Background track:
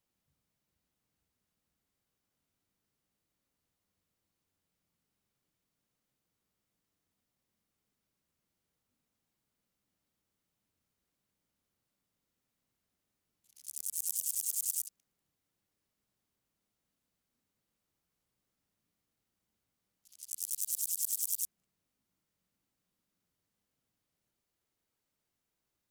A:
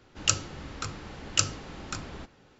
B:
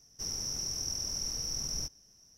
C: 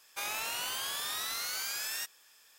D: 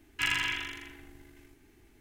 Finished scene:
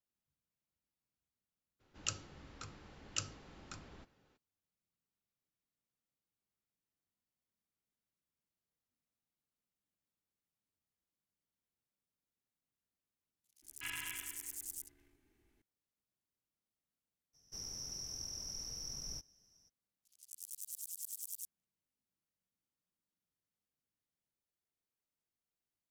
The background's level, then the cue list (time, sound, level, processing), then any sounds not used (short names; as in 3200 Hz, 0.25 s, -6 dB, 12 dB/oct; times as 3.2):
background track -11.5 dB
1.79 add A -14.5 dB, fades 0.02 s
13.62 add D -15 dB
17.33 add B -9.5 dB, fades 0.02 s
not used: C